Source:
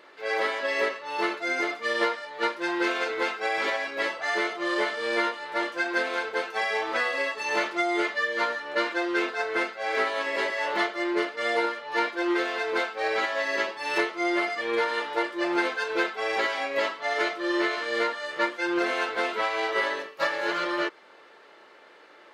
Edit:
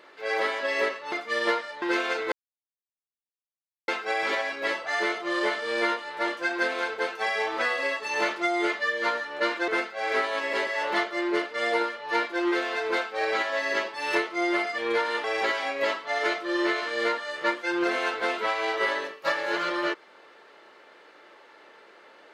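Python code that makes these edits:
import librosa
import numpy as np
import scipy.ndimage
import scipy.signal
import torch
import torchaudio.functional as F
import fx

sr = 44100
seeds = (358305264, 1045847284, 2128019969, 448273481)

y = fx.edit(x, sr, fx.cut(start_s=1.12, length_s=0.54),
    fx.cut(start_s=2.36, length_s=0.37),
    fx.insert_silence(at_s=3.23, length_s=1.56),
    fx.cut(start_s=9.03, length_s=0.48),
    fx.cut(start_s=15.07, length_s=1.12), tone=tone)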